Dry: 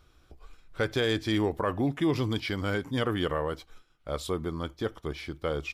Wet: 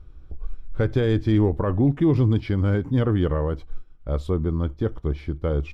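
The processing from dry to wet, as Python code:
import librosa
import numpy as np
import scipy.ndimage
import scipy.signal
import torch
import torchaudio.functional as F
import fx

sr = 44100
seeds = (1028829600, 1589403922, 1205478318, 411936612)

y = fx.tilt_eq(x, sr, slope=-4.0)
y = fx.notch(y, sr, hz=690.0, q=18.0)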